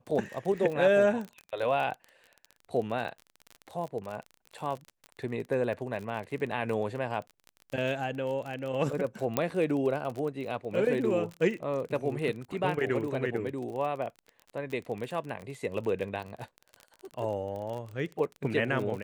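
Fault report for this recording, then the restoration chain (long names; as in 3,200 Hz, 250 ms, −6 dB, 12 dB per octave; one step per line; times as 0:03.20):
surface crackle 31 per second −35 dBFS
0:09.37: click −12 dBFS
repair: click removal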